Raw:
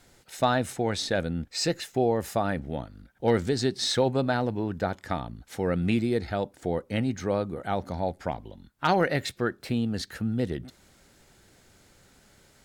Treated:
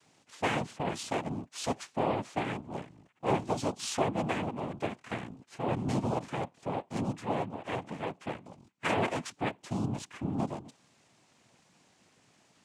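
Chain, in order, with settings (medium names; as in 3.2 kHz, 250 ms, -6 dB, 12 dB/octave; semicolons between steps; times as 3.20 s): dynamic bell 6 kHz, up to -6 dB, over -49 dBFS, Q 1; noise-vocoded speech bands 4; trim -5.5 dB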